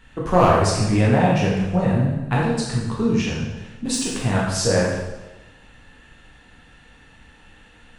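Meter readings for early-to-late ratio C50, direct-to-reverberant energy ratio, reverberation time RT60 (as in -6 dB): 0.5 dB, -5.0 dB, 1.1 s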